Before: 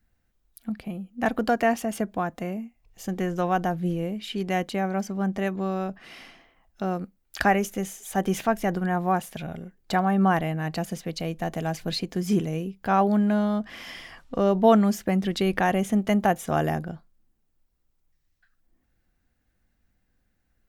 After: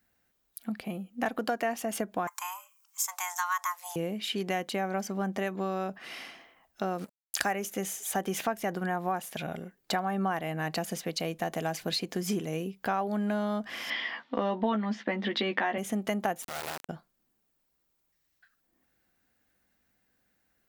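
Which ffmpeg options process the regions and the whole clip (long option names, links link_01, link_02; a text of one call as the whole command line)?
ffmpeg -i in.wav -filter_complex "[0:a]asettb=1/sr,asplit=3[link_01][link_02][link_03];[link_01]atrim=end=2.274[link_04];[link_02]atrim=start=2.27:end=3.96,asetpts=PTS-STARTPTS,afade=type=in:duration=0.004:curve=qsin,afade=type=out:start_time=1.686:duration=0.004:curve=qsin,highpass=frequency=600:width=0.5412,highpass=frequency=600:width=1.3066,highshelf=frequency=4400:width_type=q:width=1.5:gain=10.5,afreqshift=360[link_05];[link_03]atrim=start=3.956[link_06];[link_04][link_05]acrossfade=duration=0.004:curve1=hsin:curve2=qsin[link_07];[link_07][link_06]acrossfade=duration=0.004:curve1=qsin:curve2=hsin,asettb=1/sr,asplit=3[link_08][link_09][link_10];[link_08]atrim=end=6.984[link_11];[link_09]atrim=start=6.98:end=7.53,asetpts=PTS-STARTPTS,afade=type=in:duration=0.004:curve=qsin,afade=type=out:start_time=0.546:duration=0.004:curve=qsin,equalizer=frequency=8800:width_type=o:width=1.2:gain=12,acrusher=bits=7:mix=0:aa=0.5[link_12];[link_10]atrim=start=7.526[link_13];[link_11][link_12]acrossfade=duration=0.004:curve1=hsin:curve2=qsin[link_14];[link_14][link_13]acrossfade=duration=0.004:curve1=qsin:curve2=hsin,asettb=1/sr,asplit=3[link_15][link_16][link_17];[link_15]atrim=end=13.904[link_18];[link_16]atrim=start=13.9:end=15.78,asetpts=PTS-STARTPTS,afade=type=in:duration=0.004:curve=qsin,afade=type=out:start_time=1.876:duration=0.004:curve=qsin,highpass=frequency=190:width=0.5412,highpass=frequency=190:width=1.3066,equalizer=frequency=240:width_type=q:width=4:gain=8,equalizer=frequency=970:width_type=q:width=4:gain=5,equalizer=frequency=1900:width_type=q:width=4:gain=7,equalizer=frequency=3400:width_type=q:width=4:gain=5,lowpass=frequency=4400:width=0.5412,lowpass=frequency=4400:width=1.3066,asplit=2[link_19][link_20];[link_20]adelay=14,volume=-5dB[link_21];[link_19][link_21]amix=inputs=2:normalize=0,atrim=end_sample=82908[link_22];[link_17]atrim=start=15.776[link_23];[link_18][link_22]acrossfade=duration=0.004:curve1=hsin:curve2=qsin[link_24];[link_24][link_23]acrossfade=duration=0.004:curve1=qsin:curve2=hsin,asettb=1/sr,asplit=3[link_25][link_26][link_27];[link_25]atrim=end=16.424[link_28];[link_26]atrim=start=16.42:end=16.89,asetpts=PTS-STARTPTS,afade=type=in:duration=0.004:curve=qsin,afade=type=out:start_time=0.466:duration=0.004:curve=qsin,acompressor=threshold=-37dB:ratio=2.5:attack=3.2:release=140:knee=1:detection=peak,acrusher=bits=3:dc=4:mix=0:aa=0.000001[link_29];[link_27]atrim=start=16.886[link_30];[link_28][link_29]acrossfade=duration=0.004:curve1=hsin:curve2=qsin[link_31];[link_31][link_30]acrossfade=duration=0.004:curve1=qsin:curve2=hsin,highpass=frequency=350:poles=1,acompressor=threshold=-31dB:ratio=4,highshelf=frequency=12000:gain=4.5,volume=3dB" out.wav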